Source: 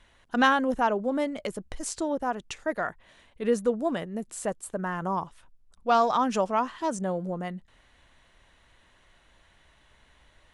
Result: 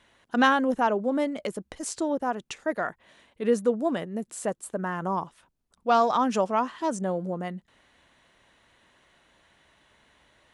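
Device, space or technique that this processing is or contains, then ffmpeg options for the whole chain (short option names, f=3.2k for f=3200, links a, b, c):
filter by subtraction: -filter_complex "[0:a]asplit=2[a][b];[b]lowpass=240,volume=-1[c];[a][c]amix=inputs=2:normalize=0"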